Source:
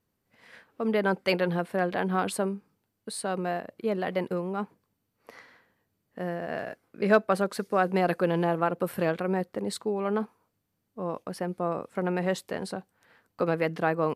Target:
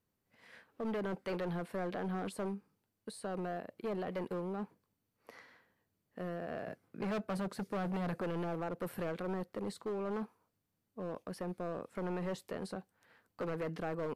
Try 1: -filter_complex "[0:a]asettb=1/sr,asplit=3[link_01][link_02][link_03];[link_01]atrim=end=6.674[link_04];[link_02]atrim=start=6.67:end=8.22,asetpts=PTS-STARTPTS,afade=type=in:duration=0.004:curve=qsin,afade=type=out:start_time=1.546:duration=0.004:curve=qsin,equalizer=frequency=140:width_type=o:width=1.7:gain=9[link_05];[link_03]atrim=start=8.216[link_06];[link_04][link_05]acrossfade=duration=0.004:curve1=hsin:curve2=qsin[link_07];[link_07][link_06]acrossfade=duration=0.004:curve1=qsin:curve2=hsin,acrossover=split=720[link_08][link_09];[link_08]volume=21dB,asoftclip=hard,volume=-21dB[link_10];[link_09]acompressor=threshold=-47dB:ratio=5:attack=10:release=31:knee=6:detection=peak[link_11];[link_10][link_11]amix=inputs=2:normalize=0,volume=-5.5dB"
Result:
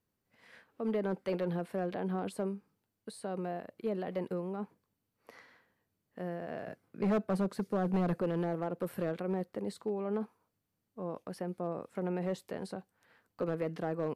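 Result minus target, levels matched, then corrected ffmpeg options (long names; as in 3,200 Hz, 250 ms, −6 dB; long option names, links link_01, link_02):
gain into a clipping stage and back: distortion −8 dB
-filter_complex "[0:a]asettb=1/sr,asplit=3[link_01][link_02][link_03];[link_01]atrim=end=6.674[link_04];[link_02]atrim=start=6.67:end=8.22,asetpts=PTS-STARTPTS,afade=type=in:duration=0.004:curve=qsin,afade=type=out:start_time=1.546:duration=0.004:curve=qsin,equalizer=frequency=140:width_type=o:width=1.7:gain=9[link_05];[link_03]atrim=start=8.216[link_06];[link_04][link_05]acrossfade=duration=0.004:curve1=hsin:curve2=qsin[link_07];[link_07][link_06]acrossfade=duration=0.004:curve1=qsin:curve2=hsin,acrossover=split=720[link_08][link_09];[link_08]volume=29.5dB,asoftclip=hard,volume=-29.5dB[link_10];[link_09]acompressor=threshold=-47dB:ratio=5:attack=10:release=31:knee=6:detection=peak[link_11];[link_10][link_11]amix=inputs=2:normalize=0,volume=-5.5dB"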